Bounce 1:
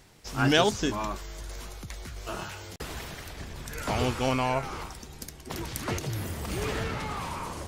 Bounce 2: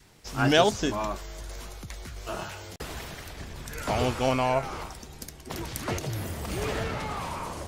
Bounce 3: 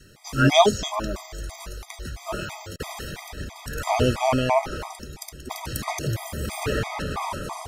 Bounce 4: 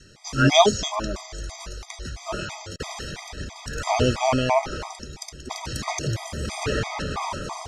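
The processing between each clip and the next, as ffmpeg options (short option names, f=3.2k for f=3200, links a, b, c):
-af "adynamicequalizer=threshold=0.00631:dfrequency=640:dqfactor=2.4:tfrequency=640:tqfactor=2.4:attack=5:release=100:ratio=0.375:range=2.5:mode=boostabove:tftype=bell"
-af "afftfilt=real='re*gt(sin(2*PI*3*pts/sr)*(1-2*mod(floor(b*sr/1024/640),2)),0)':imag='im*gt(sin(2*PI*3*pts/sr)*(1-2*mod(floor(b*sr/1024/640),2)),0)':win_size=1024:overlap=0.75,volume=7dB"
-af "lowpass=f=6.3k:t=q:w=1.6"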